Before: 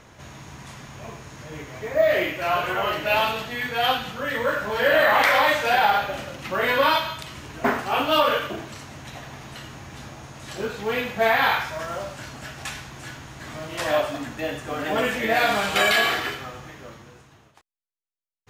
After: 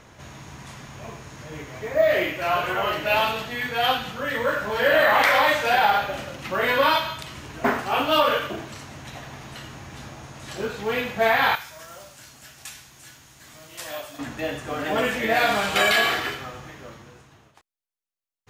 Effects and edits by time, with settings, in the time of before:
0:11.55–0:14.19: first-order pre-emphasis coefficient 0.8

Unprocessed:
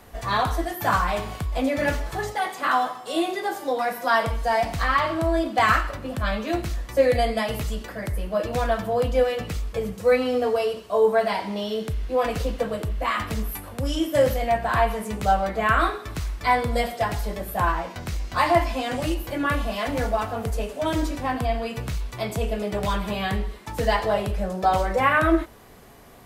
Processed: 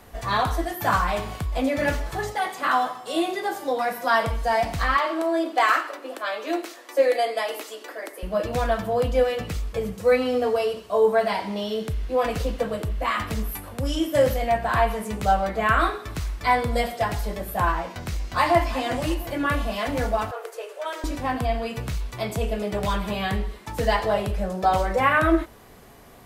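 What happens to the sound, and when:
0:04.97–0:08.23: elliptic high-pass filter 300 Hz, stop band 50 dB
0:18.27–0:18.78: delay throw 350 ms, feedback 35%, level −14 dB
0:20.31–0:21.04: Chebyshev high-pass with heavy ripple 350 Hz, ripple 6 dB

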